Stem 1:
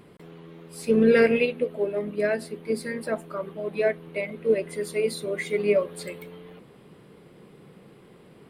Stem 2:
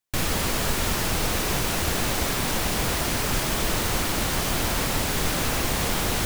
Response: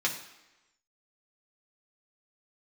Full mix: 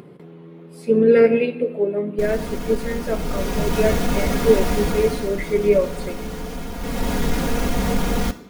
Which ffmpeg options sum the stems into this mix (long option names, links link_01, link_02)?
-filter_complex "[0:a]highpass=140,dynaudnorm=framelen=440:gausssize=5:maxgain=3dB,volume=-4dB,asplit=2[link_01][link_02];[link_02]volume=-9.5dB[link_03];[1:a]aecho=1:1:4.2:0.85,asoftclip=type=tanh:threshold=-17dB,adelay=2050,volume=8.5dB,afade=type=in:start_time=3.1:duration=0.73:silence=0.375837,afade=type=out:start_time=4.72:duration=0.62:silence=0.316228,afade=type=in:start_time=6.77:duration=0.34:silence=0.334965,asplit=2[link_04][link_05];[link_05]volume=-11dB[link_06];[2:a]atrim=start_sample=2205[link_07];[link_03][link_06]amix=inputs=2:normalize=0[link_08];[link_08][link_07]afir=irnorm=-1:irlink=0[link_09];[link_01][link_04][link_09]amix=inputs=3:normalize=0,tiltshelf=frequency=840:gain=7,acompressor=mode=upward:threshold=-37dB:ratio=2.5"